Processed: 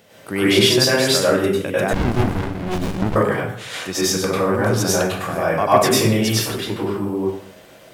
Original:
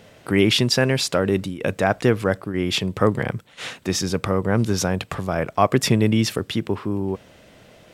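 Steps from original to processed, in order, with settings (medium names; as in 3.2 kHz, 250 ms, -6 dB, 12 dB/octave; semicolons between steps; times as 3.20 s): bass shelf 110 Hz -10.5 dB; 6.07–6.61 s: transient shaper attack -10 dB, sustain +3 dB; treble shelf 11 kHz +12 dB; plate-style reverb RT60 0.67 s, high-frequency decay 0.65×, pre-delay 85 ms, DRR -8 dB; 1.93–3.16 s: sliding maximum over 65 samples; trim -4 dB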